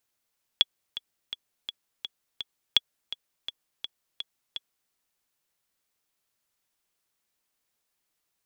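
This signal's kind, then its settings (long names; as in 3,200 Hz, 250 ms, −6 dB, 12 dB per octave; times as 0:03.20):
click track 167 BPM, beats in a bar 6, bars 2, 3,370 Hz, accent 15 dB −5 dBFS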